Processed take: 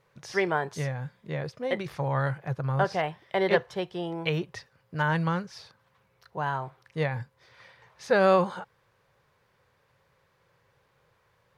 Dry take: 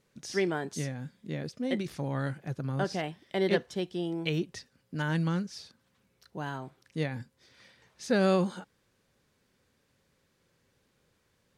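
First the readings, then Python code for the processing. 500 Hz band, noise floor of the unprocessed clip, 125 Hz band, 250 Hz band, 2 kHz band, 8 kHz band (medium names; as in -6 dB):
+4.5 dB, -73 dBFS, +3.0 dB, -1.5 dB, +6.0 dB, no reading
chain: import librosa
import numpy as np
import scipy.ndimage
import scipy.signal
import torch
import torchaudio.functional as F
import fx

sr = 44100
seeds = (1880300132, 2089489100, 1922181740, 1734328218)

y = fx.graphic_eq_10(x, sr, hz=(125, 250, 500, 1000, 2000, 8000), db=(8, -11, 6, 10, 4, -6))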